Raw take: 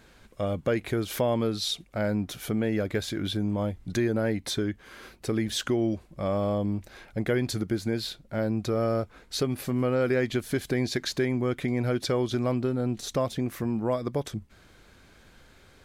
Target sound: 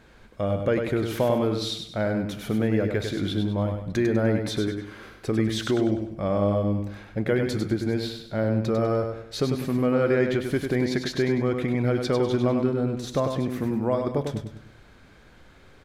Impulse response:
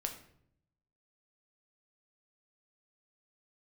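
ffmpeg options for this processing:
-filter_complex "[0:a]highshelf=f=4.3k:g=-9.5,aecho=1:1:99|198|297|396|495:0.501|0.19|0.0724|0.0275|0.0105,asplit=2[a][b];[1:a]atrim=start_sample=2205[c];[b][c]afir=irnorm=-1:irlink=0,volume=-8.5dB[d];[a][d]amix=inputs=2:normalize=0"

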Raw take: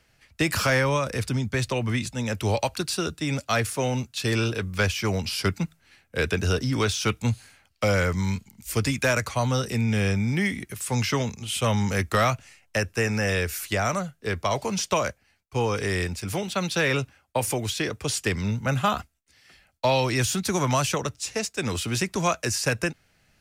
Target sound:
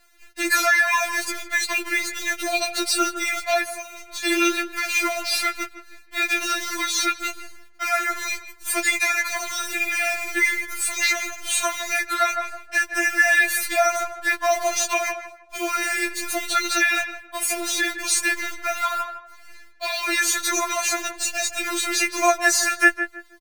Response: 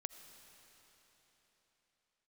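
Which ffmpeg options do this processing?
-filter_complex "[0:a]asettb=1/sr,asplit=3[a][b][c];[a]atrim=end=6.194[d];[b]atrim=start=6.19:end=6.76,asetpts=PTS-STARTPTS,afade=t=in:d=0.004:c=qsin,afade=t=out:st=0.566:d=0.004:c=qsin,aeval=exprs='val(0)+0.5*0.0178*sgn(val(0))':c=same[e];[c]atrim=start=6.756[f];[d][e]acrossfade=d=0.004:c1=hsin:c2=qsin[g];[g][f]acrossfade=d=0.004:c1=qsin:c2=hsin,highpass=f=480:w=0.5412,highpass=f=480:w=1.3066,aecho=1:1:6.3:0.77,acrusher=bits=7:dc=4:mix=0:aa=0.000001,asplit=2[h][i];[i]adelay=159,lowpass=f=1.8k:p=1,volume=-10dB,asplit=2[j][k];[k]adelay=159,lowpass=f=1.8k:p=1,volume=0.3,asplit=2[l][m];[m]adelay=159,lowpass=f=1.8k:p=1,volume=0.3[n];[j][l][n]amix=inputs=3:normalize=0[o];[h][o]amix=inputs=2:normalize=0,asplit=3[p][q][r];[p]afade=t=out:st=3.63:d=0.02[s];[q]acompressor=threshold=-35dB:ratio=6,afade=t=in:st=3.63:d=0.02,afade=t=out:st=4.23:d=0.02[t];[r]afade=t=in:st=4.23:d=0.02[u];[s][t][u]amix=inputs=3:normalize=0,equalizer=f=1.3k:w=1.9:g=7,alimiter=limit=-13dB:level=0:latency=1:release=146,afftfilt=real='re*4*eq(mod(b,16),0)':imag='im*4*eq(mod(b,16),0)':win_size=2048:overlap=0.75,volume=7.5dB"

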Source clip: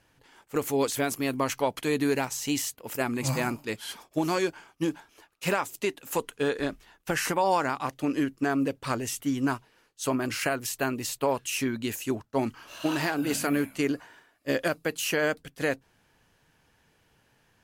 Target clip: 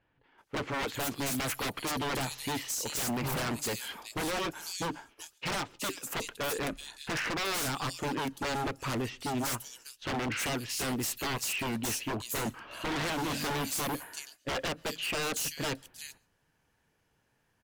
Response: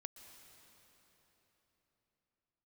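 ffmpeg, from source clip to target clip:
-filter_complex "[0:a]acrossover=split=3500[a][b];[b]adelay=380[c];[a][c]amix=inputs=2:normalize=0,agate=range=-10dB:threshold=-54dB:ratio=16:detection=peak,aeval=exprs='0.0335*(abs(mod(val(0)/0.0335+3,4)-2)-1)':c=same,asplit=2[d][e];[1:a]atrim=start_sample=2205,afade=t=out:st=0.2:d=0.01,atrim=end_sample=9261[f];[e][f]afir=irnorm=-1:irlink=0,volume=-5dB[g];[d][g]amix=inputs=2:normalize=0"

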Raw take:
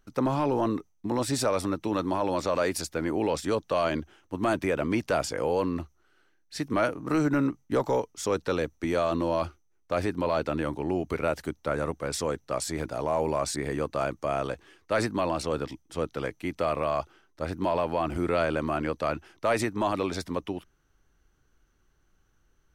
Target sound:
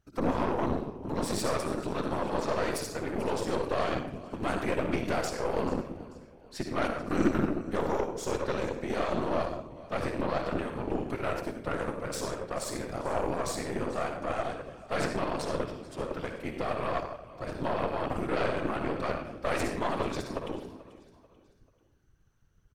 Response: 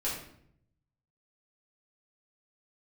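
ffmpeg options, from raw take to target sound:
-filter_complex "[0:a]asplit=2[a][b];[1:a]atrim=start_sample=2205,adelay=53[c];[b][c]afir=irnorm=-1:irlink=0,volume=-8.5dB[d];[a][d]amix=inputs=2:normalize=0,afftfilt=real='hypot(re,im)*cos(2*PI*random(0))':imag='hypot(re,im)*sin(2*PI*random(1))':win_size=512:overlap=0.75,aecho=1:1:438|876|1314:0.126|0.0529|0.0222,aeval=exprs='0.224*(cos(1*acos(clip(val(0)/0.224,-1,1)))-cos(1*PI/2))+0.0251*(cos(8*acos(clip(val(0)/0.224,-1,1)))-cos(8*PI/2))':c=same"

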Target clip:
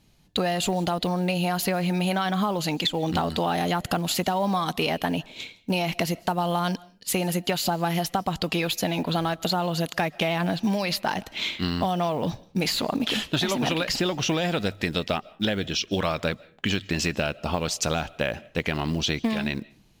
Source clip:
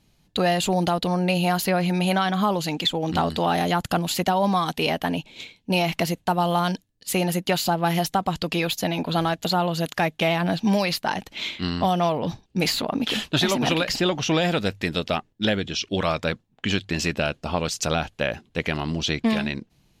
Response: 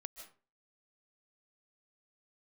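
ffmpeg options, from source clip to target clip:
-filter_complex "[0:a]acompressor=threshold=-22dB:ratio=10,acrusher=bits=8:mode=log:mix=0:aa=0.000001,asplit=2[a][b];[1:a]atrim=start_sample=2205[c];[b][c]afir=irnorm=-1:irlink=0,volume=-10dB[d];[a][d]amix=inputs=2:normalize=0"

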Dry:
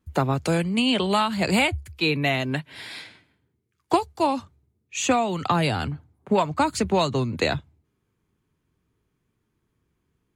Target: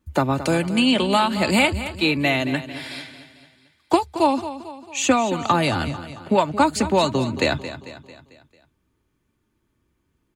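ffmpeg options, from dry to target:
-filter_complex "[0:a]aecho=1:1:3.4:0.35,asplit=2[a][b];[b]aecho=0:1:223|446|669|892|1115:0.224|0.112|0.056|0.028|0.014[c];[a][c]amix=inputs=2:normalize=0,volume=2.5dB"

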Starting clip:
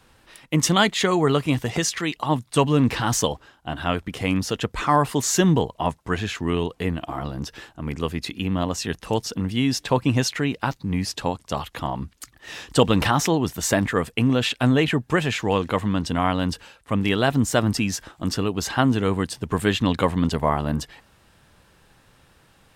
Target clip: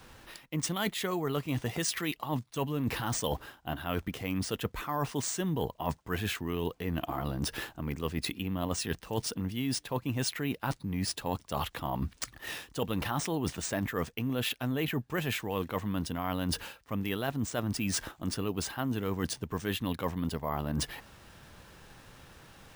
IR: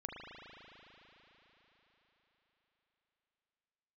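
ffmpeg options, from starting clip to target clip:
-af "areverse,acompressor=threshold=-32dB:ratio=10,areverse,acrusher=samples=3:mix=1:aa=0.000001,volume=3dB"

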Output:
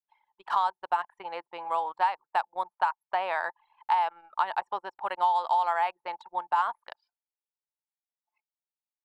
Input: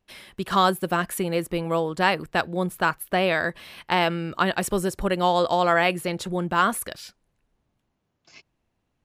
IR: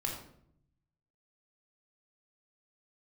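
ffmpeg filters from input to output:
-filter_complex "[0:a]highpass=f=880:t=q:w=8.6,acrossover=split=2200|5400[a][b][c];[a]acompressor=threshold=-16dB:ratio=4[d];[b]acompressor=threshold=-38dB:ratio=4[e];[c]acompressor=threshold=-53dB:ratio=4[f];[d][e][f]amix=inputs=3:normalize=0,anlmdn=25.1,volume=-7.5dB"

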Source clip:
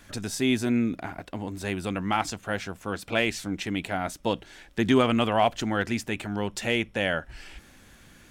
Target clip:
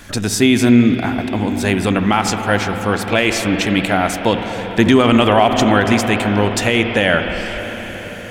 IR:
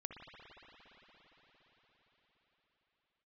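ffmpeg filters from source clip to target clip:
-filter_complex "[0:a]asplit=2[a][b];[1:a]atrim=start_sample=2205[c];[b][c]afir=irnorm=-1:irlink=0,volume=3dB[d];[a][d]amix=inputs=2:normalize=0,alimiter=level_in=9.5dB:limit=-1dB:release=50:level=0:latency=1,volume=-1dB"

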